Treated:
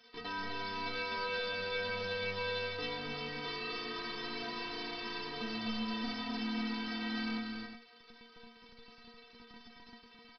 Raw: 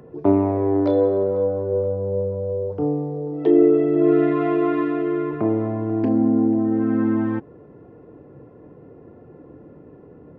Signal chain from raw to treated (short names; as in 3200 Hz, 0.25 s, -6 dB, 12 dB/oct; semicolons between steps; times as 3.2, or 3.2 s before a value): half-waves squared off; high shelf 3000 Hz +11.5 dB; in parallel at -1 dB: compressor, threshold -22 dBFS, peak gain reduction 16.5 dB; on the sum: limiter -3 dBFS, peak gain reduction 12 dB; bit-crush 5-bit; metallic resonator 230 Hz, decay 0.3 s, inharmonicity 0.008; downsampling 11025 Hz; on a send: tapped delay 0.258/0.359 s -5/-9.5 dB; on the sum: gain -6 dB